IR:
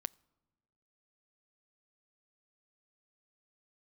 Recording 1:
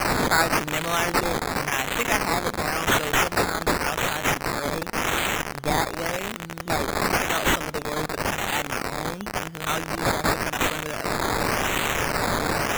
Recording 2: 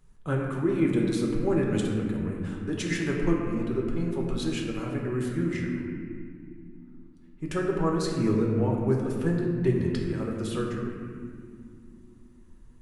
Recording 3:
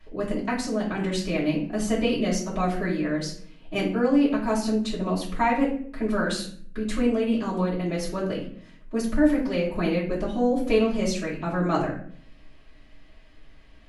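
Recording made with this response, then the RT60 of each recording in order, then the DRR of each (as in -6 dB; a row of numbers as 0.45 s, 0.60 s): 1; no single decay rate, 2.2 s, 0.55 s; 22.0 dB, -1.5 dB, -10.0 dB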